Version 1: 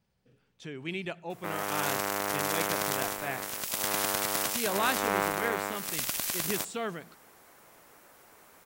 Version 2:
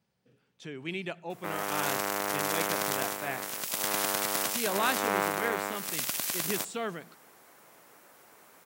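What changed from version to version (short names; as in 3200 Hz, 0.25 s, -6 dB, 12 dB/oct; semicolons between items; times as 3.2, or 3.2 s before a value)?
master: add HPF 120 Hz 12 dB/oct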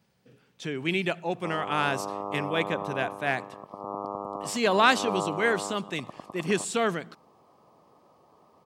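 speech +8.5 dB; background: add brick-wall FIR low-pass 1300 Hz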